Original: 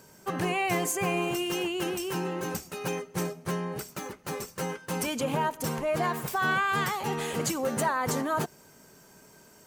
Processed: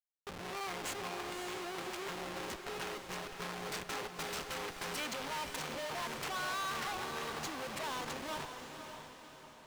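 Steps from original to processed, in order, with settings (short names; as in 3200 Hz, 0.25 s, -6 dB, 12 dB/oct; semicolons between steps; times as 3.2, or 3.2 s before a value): Doppler pass-by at 4.3, 7 m/s, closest 5.2 m; Schmitt trigger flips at -43.5 dBFS; overdrive pedal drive 18 dB, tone 1300 Hz, clips at -32.5 dBFS; tilt shelf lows -9.5 dB, about 1500 Hz; on a send: diffused feedback echo 0.557 s, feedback 48%, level -7 dB; on the sum: gain +3 dB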